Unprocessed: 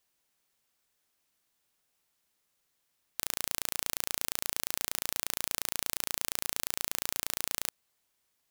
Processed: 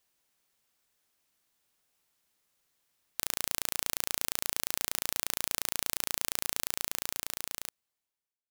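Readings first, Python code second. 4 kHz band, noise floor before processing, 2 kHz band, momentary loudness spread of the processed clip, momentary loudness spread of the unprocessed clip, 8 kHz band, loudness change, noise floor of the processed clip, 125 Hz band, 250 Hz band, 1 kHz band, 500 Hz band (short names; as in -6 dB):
+0.5 dB, -78 dBFS, +0.5 dB, 6 LU, 2 LU, +0.5 dB, +0.5 dB, under -85 dBFS, +0.5 dB, +0.5 dB, +0.5 dB, +0.5 dB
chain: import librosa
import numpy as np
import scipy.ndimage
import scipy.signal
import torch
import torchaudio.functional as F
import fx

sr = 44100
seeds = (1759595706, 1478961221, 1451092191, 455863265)

y = fx.fade_out_tail(x, sr, length_s=1.95)
y = F.gain(torch.from_numpy(y), 1.0).numpy()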